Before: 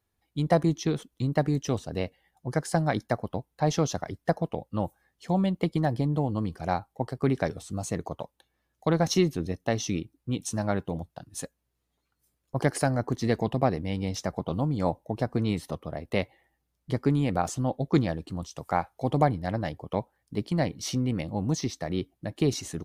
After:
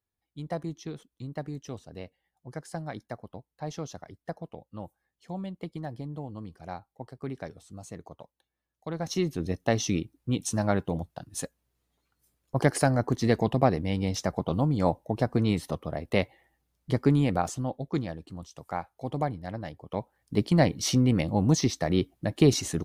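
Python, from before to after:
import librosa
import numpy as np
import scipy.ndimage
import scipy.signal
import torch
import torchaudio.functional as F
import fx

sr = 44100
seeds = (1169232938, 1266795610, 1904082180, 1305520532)

y = fx.gain(x, sr, db=fx.line((8.89, -11.0), (9.54, 2.0), (17.21, 2.0), (17.89, -6.5), (19.81, -6.5), (20.37, 5.0)))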